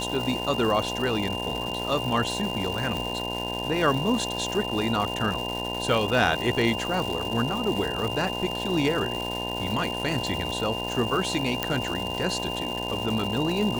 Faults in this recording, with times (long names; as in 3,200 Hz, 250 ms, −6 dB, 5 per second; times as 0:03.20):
mains buzz 60 Hz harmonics 17 −33 dBFS
surface crackle 490 per second −30 dBFS
whistle 2,800 Hz −32 dBFS
0:02.97: click
0:11.63: click −9 dBFS